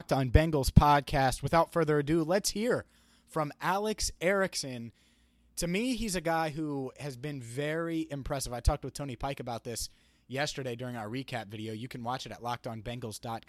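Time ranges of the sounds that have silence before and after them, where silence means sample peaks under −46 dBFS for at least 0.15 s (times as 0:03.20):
0:03.32–0:04.89
0:05.57–0:09.87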